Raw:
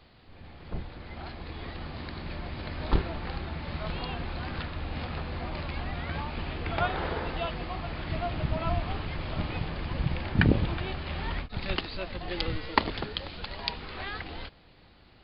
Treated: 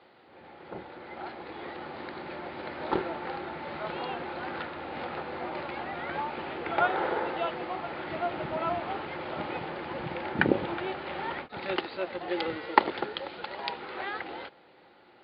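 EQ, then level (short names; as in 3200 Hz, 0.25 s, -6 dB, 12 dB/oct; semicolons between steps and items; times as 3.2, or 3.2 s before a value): speaker cabinet 210–4200 Hz, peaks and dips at 360 Hz +9 dB, 530 Hz +8 dB, 840 Hz +10 dB, 1400 Hz +7 dB, 2000 Hz +4 dB; -3.0 dB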